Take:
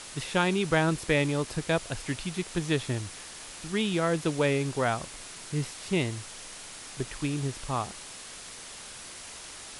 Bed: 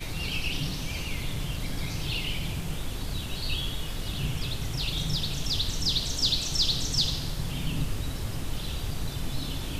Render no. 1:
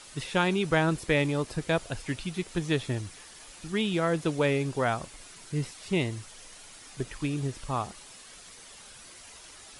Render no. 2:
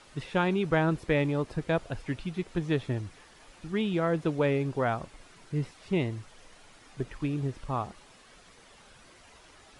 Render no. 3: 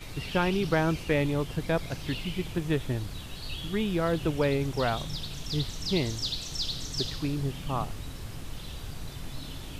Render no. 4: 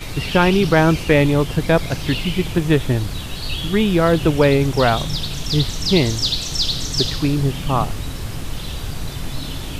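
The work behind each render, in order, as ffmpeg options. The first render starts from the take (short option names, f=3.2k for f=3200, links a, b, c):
-af "afftdn=nr=8:nf=-44"
-af "lowpass=f=1.7k:p=1"
-filter_complex "[1:a]volume=-7dB[a];[0:a][a]amix=inputs=2:normalize=0"
-af "volume=12dB,alimiter=limit=-2dB:level=0:latency=1"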